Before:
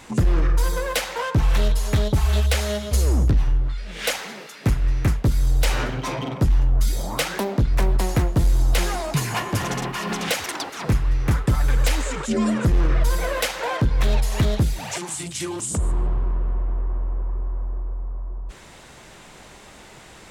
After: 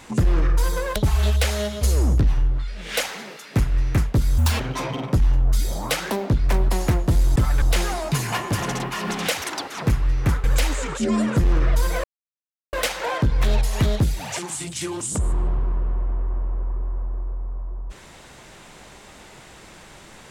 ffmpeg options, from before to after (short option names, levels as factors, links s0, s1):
-filter_complex "[0:a]asplit=8[s0][s1][s2][s3][s4][s5][s6][s7];[s0]atrim=end=0.962[s8];[s1]atrim=start=2.058:end=5.484[s9];[s2]atrim=start=5.48:end=5.88,asetpts=PTS-STARTPTS,asetrate=80703,aresample=44100,atrim=end_sample=9639,asetpts=PTS-STARTPTS[s10];[s3]atrim=start=5.876:end=8.642[s11];[s4]atrim=start=11.458:end=11.722[s12];[s5]atrim=start=8.638:end=11.462[s13];[s6]atrim=start=11.718:end=13.32,asetpts=PTS-STARTPTS,afade=t=out:st=1.598:d=0.004:c=hsin,apad=pad_dur=0.69[s14];[s7]atrim=start=13.32,asetpts=PTS-STARTPTS,afade=t=in:d=0.004:c=hsin[s15];[s8][s9]acrossfade=d=0.004:c1=hsin:c2=hsin[s16];[s16][s10]acrossfade=d=0.004:c1=hsin:c2=hsin[s17];[s17][s11]acrossfade=d=0.004:c1=hsin:c2=hsin[s18];[s18][s12]acrossfade=d=0.004:c1=hsin:c2=hsin[s19];[s19][s13]acrossfade=d=0.004:c1=hsin:c2=hsin[s20];[s14][s15]concat=n=2:v=0:a=1[s21];[s20][s21]acrossfade=d=0.004:c1=hsin:c2=hsin"